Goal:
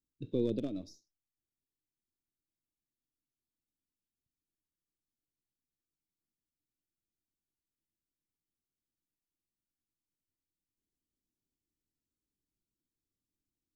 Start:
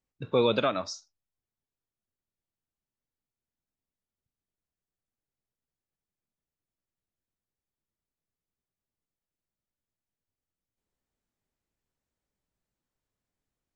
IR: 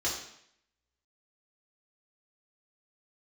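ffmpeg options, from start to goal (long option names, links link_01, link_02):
-filter_complex "[0:a]aeval=exprs='if(lt(val(0),0),0.708*val(0),val(0))':channel_layout=same,acrossover=split=440|3000[link_01][link_02][link_03];[link_02]acrusher=bits=2:mix=0:aa=0.5[link_04];[link_03]acompressor=threshold=-54dB:ratio=4[link_05];[link_01][link_04][link_05]amix=inputs=3:normalize=0,equalizer=frequency=310:width=2.4:gain=9.5,volume=-4.5dB"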